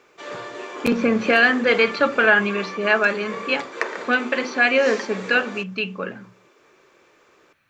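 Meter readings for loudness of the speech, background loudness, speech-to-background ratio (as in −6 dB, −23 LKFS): −20.0 LKFS, −33.0 LKFS, 13.0 dB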